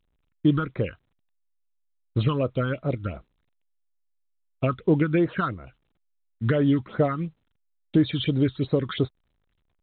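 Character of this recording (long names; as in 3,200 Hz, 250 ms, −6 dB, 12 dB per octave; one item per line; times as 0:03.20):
phaser sweep stages 6, 2.9 Hz, lowest notch 550–2,900 Hz
A-law companding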